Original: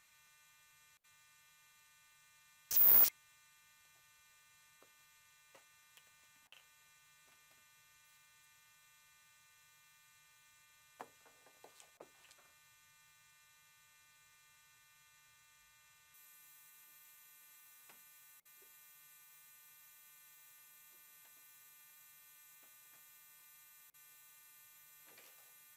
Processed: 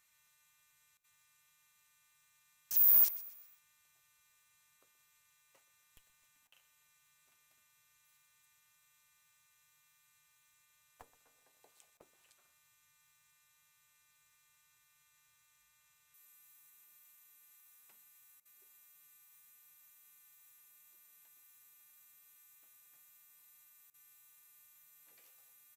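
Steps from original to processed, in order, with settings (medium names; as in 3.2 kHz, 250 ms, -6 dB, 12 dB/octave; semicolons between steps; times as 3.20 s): in parallel at -9.5 dB: Schmitt trigger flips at -42.5 dBFS; on the sum: treble shelf 8.5 kHz +9.5 dB; feedback delay 126 ms, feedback 43%, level -17.5 dB; trim -7.5 dB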